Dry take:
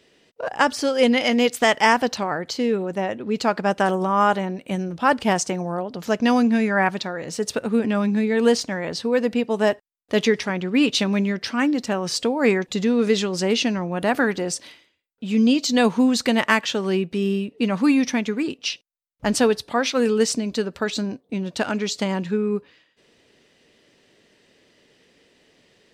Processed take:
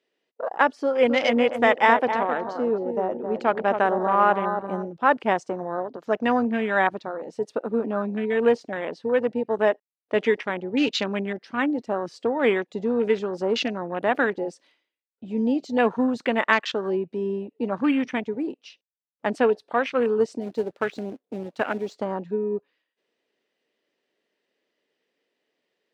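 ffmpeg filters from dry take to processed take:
ffmpeg -i in.wav -filter_complex "[0:a]asettb=1/sr,asplit=3[link_01][link_02][link_03];[link_01]atrim=end=0.764[link_04];[link_02]atrim=start=0.76:end=4.88,asetpts=PTS-STARTPTS,afade=type=in:duration=0.004:curve=qsin,afade=type=out:start_time=4.116:duration=0.004:curve=qsin,asplit=2[link_05][link_06];[link_06]adelay=264,lowpass=frequency=1200:poles=1,volume=-6dB,asplit=2[link_07][link_08];[link_08]adelay=264,lowpass=frequency=1200:poles=1,volume=0.44,asplit=2[link_09][link_10];[link_10]adelay=264,lowpass=frequency=1200:poles=1,volume=0.44,asplit=2[link_11][link_12];[link_12]adelay=264,lowpass=frequency=1200:poles=1,volume=0.44,asplit=2[link_13][link_14];[link_14]adelay=264,lowpass=frequency=1200:poles=1,volume=0.44[link_15];[link_05][link_07][link_09][link_11][link_13][link_15]amix=inputs=6:normalize=0,atrim=end_sample=181692[link_16];[link_03]atrim=start=4.876[link_17];[link_04][link_16]acrossfade=duration=0.004:curve1=hsin:curve2=qsin[link_18];[link_18][link_17]acrossfade=duration=0.004:curve1=qsin:curve2=hsin,asplit=3[link_19][link_20][link_21];[link_19]afade=type=out:start_time=20.4:duration=0.02[link_22];[link_20]acrusher=bits=2:mode=log:mix=0:aa=0.000001,afade=type=in:start_time=20.4:duration=0.02,afade=type=out:start_time=21.95:duration=0.02[link_23];[link_21]afade=type=in:start_time=21.95:duration=0.02[link_24];[link_22][link_23][link_24]amix=inputs=3:normalize=0,highpass=320,aemphasis=mode=reproduction:type=50kf,afwtdn=0.0316" out.wav

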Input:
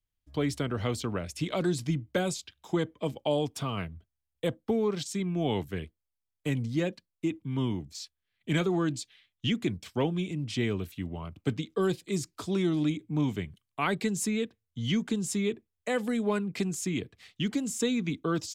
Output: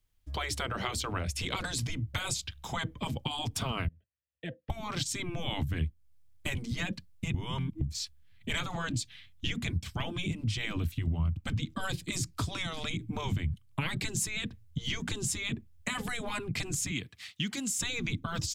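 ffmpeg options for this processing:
ffmpeg -i in.wav -filter_complex "[0:a]asettb=1/sr,asplit=3[link_01][link_02][link_03];[link_01]atrim=end=3.884[link_04];[link_02]atrim=start=3.88:end=4.7,asetpts=PTS-STARTPTS,afade=type=in:duration=0.004:curve=qsin,afade=type=out:start_time=0.816:duration=0.004:curve=qsin,asplit=3[link_05][link_06][link_07];[link_05]bandpass=frequency=530:width_type=q:width=8,volume=0dB[link_08];[link_06]bandpass=frequency=1840:width_type=q:width=8,volume=-6dB[link_09];[link_07]bandpass=frequency=2480:width_type=q:width=8,volume=-9dB[link_10];[link_08][link_09][link_10]amix=inputs=3:normalize=0[link_11];[link_03]atrim=start=4.696[link_12];[link_04][link_11]acrossfade=duration=0.004:curve1=hsin:curve2=qsin[link_13];[link_13][link_12]acrossfade=duration=0.004:curve1=qsin:curve2=hsin,asplit=3[link_14][link_15][link_16];[link_14]afade=type=out:start_time=16.9:duration=0.02[link_17];[link_15]highpass=frequency=1400:poles=1,afade=type=in:start_time=16.9:duration=0.02,afade=type=out:start_time=17.78:duration=0.02[link_18];[link_16]afade=type=in:start_time=17.78:duration=0.02[link_19];[link_17][link_18][link_19]amix=inputs=3:normalize=0,asplit=3[link_20][link_21][link_22];[link_20]atrim=end=7.342[link_23];[link_21]atrim=start=7.338:end=7.812,asetpts=PTS-STARTPTS,areverse[link_24];[link_22]atrim=start=7.808[link_25];[link_23][link_24]acrossfade=duration=0.004:curve1=hsin:curve2=hsin[link_26];[link_26][link_25]acrossfade=duration=0.004:curve1=hsin:curve2=hsin,afftfilt=real='re*lt(hypot(re,im),0.112)':imag='im*lt(hypot(re,im),0.112)':win_size=1024:overlap=0.75,asubboost=boost=11.5:cutoff=130,acompressor=threshold=-41dB:ratio=2.5,volume=9dB" out.wav

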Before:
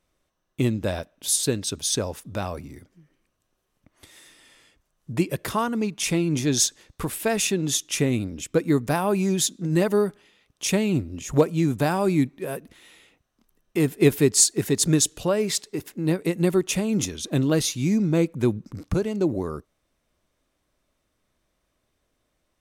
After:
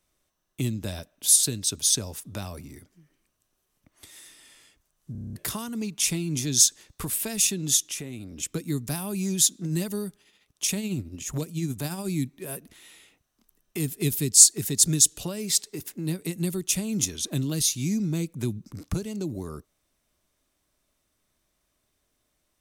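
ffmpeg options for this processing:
ffmpeg -i in.wav -filter_complex "[0:a]asettb=1/sr,asplit=3[link_01][link_02][link_03];[link_01]atrim=end=7.874[link_04];[link_02]atrim=start=7.87:end=8.43,asetpts=PTS-STARTPTS,afade=type=in:duration=0.004:curve=qsin,afade=type=out:start_time=0.556:duration=0.004:curve=qsin,acompressor=threshold=-34dB:ratio=3:attack=3.2:release=140:knee=1:detection=peak[link_05];[link_03]atrim=start=8.426[link_06];[link_04][link_05]acrossfade=duration=0.004:curve1=hsin:curve2=qsin[link_07];[link_07][link_06]acrossfade=duration=0.004:curve1=qsin:curve2=hsin,asettb=1/sr,asplit=3[link_08][link_09][link_10];[link_08]atrim=end=10.074[link_11];[link_09]atrim=start=10.07:end=12.08,asetpts=PTS-STARTPTS,afade=type=in:duration=0.004:curve=qsin,afade=type=out:start_time=2.006:duration=0.004:curve=qsin,tremolo=f=14:d=0.42[link_12];[link_10]atrim=start=12.076[link_13];[link_11][link_12]acrossfade=duration=0.004:curve1=hsin:curve2=qsin[link_14];[link_14][link_13]acrossfade=duration=0.004:curve1=qsin:curve2=hsin,asplit=9[link_15][link_16][link_17][link_18][link_19][link_20][link_21][link_22][link_23];[link_15]atrim=end=5.152[link_24];[link_16]atrim=start=5.118:end=5.152[link_25];[link_17]atrim=start=5.118:end=5.152[link_26];[link_18]atrim=start=5.118:end=5.152[link_27];[link_19]atrim=start=5.118:end=5.152[link_28];[link_20]atrim=start=5.118:end=5.152[link_29];[link_21]atrim=start=5.118:end=5.152[link_30];[link_22]atrim=start=5.118:end=5.152[link_31];[link_23]atrim=start=5.358[link_32];[link_24][link_25]acrossfade=duration=0.004:curve1=hsin:curve2=hsin[link_33];[link_33][link_26]acrossfade=duration=0.004:curve1=hsin:curve2=hsin[link_34];[link_34][link_27]acrossfade=duration=0.004:curve1=hsin:curve2=hsin[link_35];[link_35][link_28]acrossfade=duration=0.004:curve1=hsin:curve2=hsin[link_36];[link_36][link_29]acrossfade=duration=0.004:curve1=hsin:curve2=hsin[link_37];[link_37][link_30]acrossfade=duration=0.004:curve1=hsin:curve2=hsin[link_38];[link_38][link_31]acrossfade=duration=0.004:curve1=hsin:curve2=hsin[link_39];[link_39][link_32]acrossfade=duration=0.004:curve1=hsin:curve2=hsin,highshelf=frequency=4700:gain=10,bandreject=frequency=510:width=12,acrossover=split=250|3000[link_40][link_41][link_42];[link_41]acompressor=threshold=-34dB:ratio=6[link_43];[link_40][link_43][link_42]amix=inputs=3:normalize=0,volume=-3dB" out.wav

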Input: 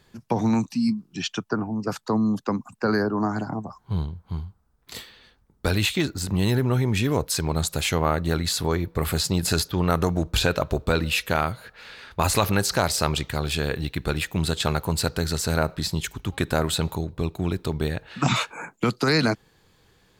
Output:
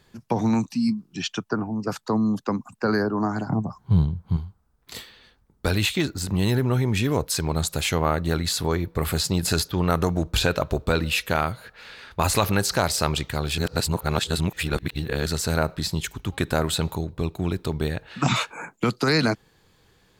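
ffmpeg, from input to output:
ffmpeg -i in.wav -filter_complex "[0:a]asettb=1/sr,asplit=3[link_01][link_02][link_03];[link_01]atrim=end=3.504[link_04];[link_02]atrim=start=3.5:end=4.37,asetpts=PTS-STARTPTS,afade=type=in:duration=0.004:curve=qsin,afade=type=out:start_time=0.866:duration=0.004:curve=qsin,equalizer=frequency=140:width_type=o:width=1.8:gain=10[link_05];[link_03]atrim=start=4.366[link_06];[link_04][link_05]acrossfade=duration=0.004:curve1=hsin:curve2=qsin[link_07];[link_07][link_06]acrossfade=duration=0.004:curve1=qsin:curve2=hsin,asplit=3[link_08][link_09][link_10];[link_08]atrim=end=13.582[link_11];[link_09]atrim=start=13.578:end=15.262,asetpts=PTS-STARTPTS,areverse[link_12];[link_10]atrim=start=15.258[link_13];[link_11][link_12]acrossfade=duration=0.004:curve1=hsin:curve2=hsin[link_14];[link_14][link_13]acrossfade=duration=0.004:curve1=hsin:curve2=hsin" out.wav

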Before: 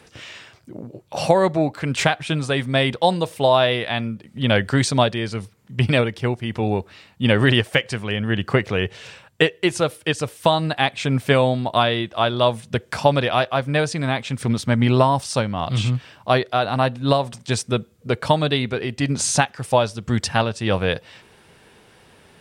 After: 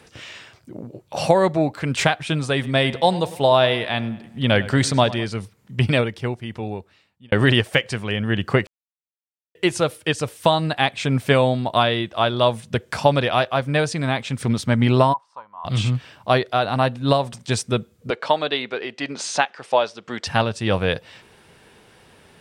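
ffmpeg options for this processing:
ffmpeg -i in.wav -filter_complex "[0:a]asettb=1/sr,asplit=3[link_01][link_02][link_03];[link_01]atrim=end=2.534[link_04];[link_02]atrim=start=2.53:end=5.26,asetpts=PTS-STARTPTS,afade=type=in:duration=0.004:curve=qsin,afade=type=out:start_time=2.726:duration=0.004:curve=qsin,asplit=2[link_05][link_06];[link_06]adelay=101,lowpass=frequency=4000:poles=1,volume=-17dB,asplit=2[link_07][link_08];[link_08]adelay=101,lowpass=frequency=4000:poles=1,volume=0.53,asplit=2[link_09][link_10];[link_10]adelay=101,lowpass=frequency=4000:poles=1,volume=0.53,asplit=2[link_11][link_12];[link_12]adelay=101,lowpass=frequency=4000:poles=1,volume=0.53,asplit=2[link_13][link_14];[link_14]adelay=101,lowpass=frequency=4000:poles=1,volume=0.53[link_15];[link_05][link_07][link_09][link_11][link_13][link_15]amix=inputs=6:normalize=0,atrim=end_sample=120393[link_16];[link_03]atrim=start=5.256[link_17];[link_04][link_16]acrossfade=duration=0.004:curve1=hsin:curve2=qsin[link_18];[link_18][link_17]acrossfade=duration=0.004:curve1=qsin:curve2=hsin,asplit=3[link_19][link_20][link_21];[link_19]afade=type=out:start_time=15.12:duration=0.02[link_22];[link_20]bandpass=frequency=990:width_type=q:width=12,afade=type=in:start_time=15.12:duration=0.02,afade=type=out:start_time=15.64:duration=0.02[link_23];[link_21]afade=type=in:start_time=15.64:duration=0.02[link_24];[link_22][link_23][link_24]amix=inputs=3:normalize=0,asettb=1/sr,asplit=3[link_25][link_26][link_27];[link_25]atrim=end=18.104[link_28];[link_26]atrim=start=18.1:end=20.27,asetpts=PTS-STARTPTS,afade=type=in:duration=0.004:curve=qsin,afade=type=out:start_time=2.166:duration=0.004:curve=qsin,highpass=400,lowpass=4800[link_29];[link_27]atrim=start=20.266[link_30];[link_28][link_29]acrossfade=duration=0.004:curve1=hsin:curve2=qsin[link_31];[link_31][link_30]acrossfade=duration=0.004:curve1=qsin:curve2=hsin,asplit=4[link_32][link_33][link_34][link_35];[link_32]atrim=end=7.32,asetpts=PTS-STARTPTS,afade=type=out:start_time=5.8:duration=1.52[link_36];[link_33]atrim=start=7.32:end=8.67,asetpts=PTS-STARTPTS,afade=type=in:duration=0.004:curve=hsin,afade=type=out:start_time=1.346:duration=0.004:curve=hsin[link_37];[link_34]atrim=start=8.67:end=9.55,asetpts=PTS-STARTPTS,volume=0[link_38];[link_35]atrim=start=9.55,asetpts=PTS-STARTPTS,afade=type=in:duration=0.004:curve=hsin[link_39];[link_36][link_37][link_38][link_39]concat=n=4:v=0:a=1" out.wav

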